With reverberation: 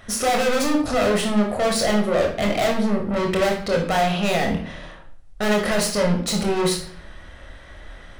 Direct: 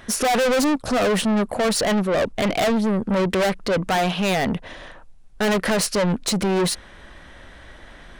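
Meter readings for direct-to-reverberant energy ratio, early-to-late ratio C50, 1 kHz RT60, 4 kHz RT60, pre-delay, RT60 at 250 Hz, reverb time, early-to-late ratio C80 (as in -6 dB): 1.0 dB, 6.0 dB, 0.50 s, 0.45 s, 24 ms, 0.65 s, 0.50 s, 11.0 dB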